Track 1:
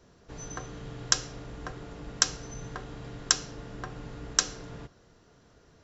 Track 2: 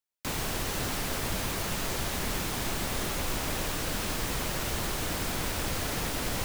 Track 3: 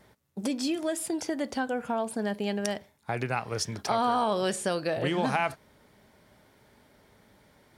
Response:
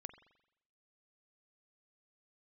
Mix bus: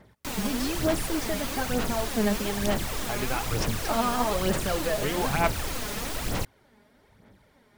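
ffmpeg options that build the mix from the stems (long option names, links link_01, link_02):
-filter_complex "[1:a]volume=-4dB,asplit=2[link_01][link_02];[link_02]volume=-6.5dB[link_03];[2:a]bass=frequency=250:gain=2,treble=frequency=4000:gain=-4,volume=-2dB[link_04];[3:a]atrim=start_sample=2205[link_05];[link_03][link_05]afir=irnorm=-1:irlink=0[link_06];[link_01][link_04][link_06]amix=inputs=3:normalize=0,aphaser=in_gain=1:out_gain=1:delay=4.9:decay=0.54:speed=1.1:type=sinusoidal"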